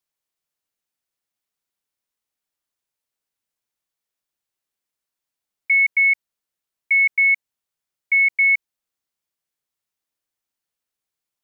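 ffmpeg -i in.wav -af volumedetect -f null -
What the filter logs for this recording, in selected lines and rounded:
mean_volume: -25.6 dB
max_volume: -11.9 dB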